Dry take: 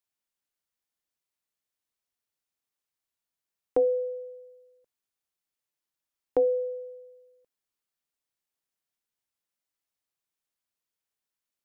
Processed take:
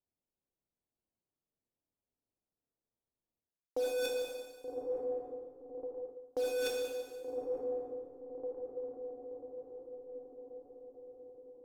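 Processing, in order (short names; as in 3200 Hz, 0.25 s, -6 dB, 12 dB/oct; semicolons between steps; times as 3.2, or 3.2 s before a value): LPF 1200 Hz 6 dB/oct; diffused feedback echo 1.19 s, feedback 60%, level -11.5 dB; in parallel at -6 dB: bit-crush 5-bit; on the sum: low-pass opened by the level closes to 560 Hz, open at -28.5 dBFS; Schroeder reverb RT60 1.4 s, combs from 25 ms, DRR 5 dB; reverse; compressor 12:1, threshold -38 dBFS, peak gain reduction 21.5 dB; reverse; gain +6 dB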